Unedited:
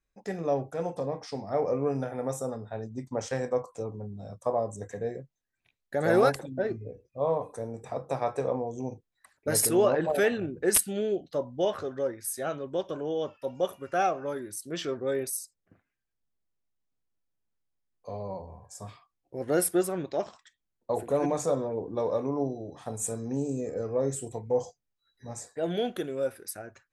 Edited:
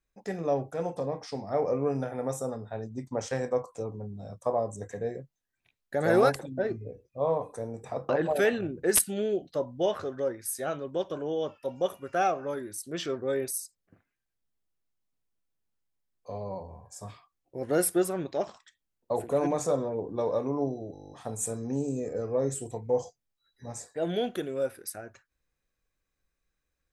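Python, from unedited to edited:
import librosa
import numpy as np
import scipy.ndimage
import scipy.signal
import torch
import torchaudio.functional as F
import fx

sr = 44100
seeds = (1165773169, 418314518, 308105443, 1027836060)

y = fx.edit(x, sr, fx.cut(start_s=8.09, length_s=1.79),
    fx.stutter(start_s=22.72, slice_s=0.02, count=10), tone=tone)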